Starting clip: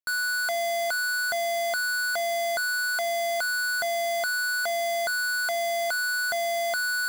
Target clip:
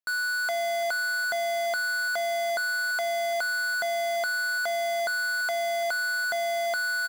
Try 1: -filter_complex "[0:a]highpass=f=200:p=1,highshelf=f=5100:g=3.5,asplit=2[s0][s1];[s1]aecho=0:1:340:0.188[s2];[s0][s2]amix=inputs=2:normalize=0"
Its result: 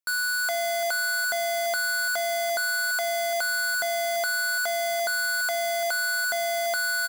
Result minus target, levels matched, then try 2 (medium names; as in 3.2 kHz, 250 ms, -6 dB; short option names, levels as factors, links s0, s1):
8 kHz band +5.0 dB; echo-to-direct +6 dB
-filter_complex "[0:a]highpass=f=200:p=1,highshelf=f=5100:g=-6,asplit=2[s0][s1];[s1]aecho=0:1:340:0.0944[s2];[s0][s2]amix=inputs=2:normalize=0"